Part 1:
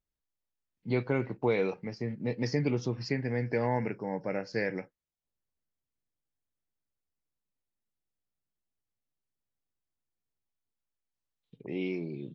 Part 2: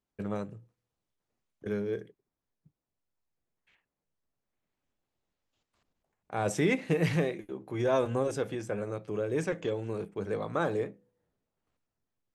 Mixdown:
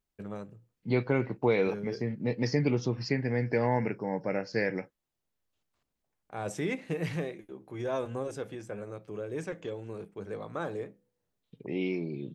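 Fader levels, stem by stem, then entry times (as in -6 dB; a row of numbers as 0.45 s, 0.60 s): +2.0 dB, -5.5 dB; 0.00 s, 0.00 s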